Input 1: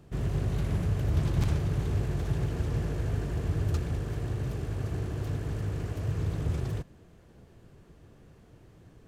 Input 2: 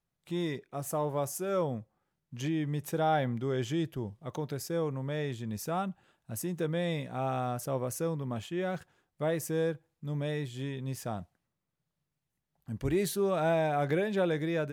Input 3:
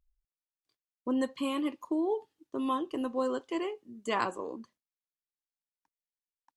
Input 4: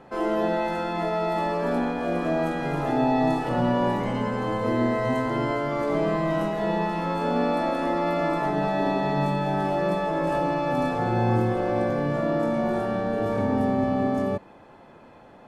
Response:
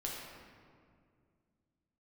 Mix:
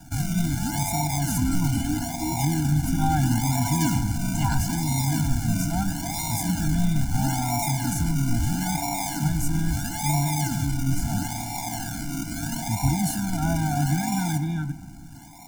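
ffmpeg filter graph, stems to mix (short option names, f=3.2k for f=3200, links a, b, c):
-filter_complex "[0:a]acompressor=threshold=-31dB:ratio=6,volume=-4dB[a];[1:a]bass=f=250:g=10,treble=f=4k:g=-3,volume=1dB,asplit=2[b][c];[c]volume=-14.5dB[d];[2:a]adelay=300,volume=3dB[e];[3:a]alimiter=limit=-23.5dB:level=0:latency=1,lowpass=f=990:t=q:w=6.7,acrusher=samples=40:mix=1:aa=0.000001:lfo=1:lforange=24:lforate=0.76,volume=-4.5dB,asplit=2[f][g];[g]volume=-6.5dB[h];[4:a]atrim=start_sample=2205[i];[d][h]amix=inputs=2:normalize=0[j];[j][i]afir=irnorm=-1:irlink=0[k];[a][b][e][f][k]amix=inputs=5:normalize=0,highshelf=f=4.7k:t=q:w=1.5:g=9,afftfilt=real='re*eq(mod(floor(b*sr/1024/340),2),0)':imag='im*eq(mod(floor(b*sr/1024/340),2),0)':win_size=1024:overlap=0.75"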